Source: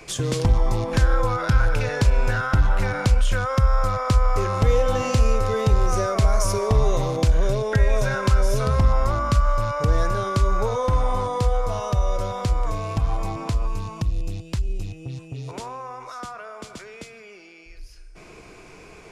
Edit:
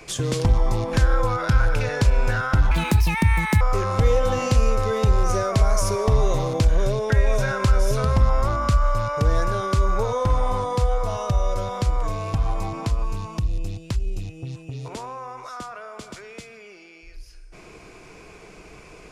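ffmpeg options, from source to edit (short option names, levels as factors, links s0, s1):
-filter_complex "[0:a]asplit=3[s0][s1][s2];[s0]atrim=end=2.714[s3];[s1]atrim=start=2.71:end=4.24,asetpts=PTS-STARTPTS,asetrate=74970,aresample=44100[s4];[s2]atrim=start=4.236[s5];[s3][s4]acrossfade=d=0.004:c1=hsin:c2=hsin[s6];[s6][s5]acrossfade=d=0.004:c1=hsin:c2=hsin"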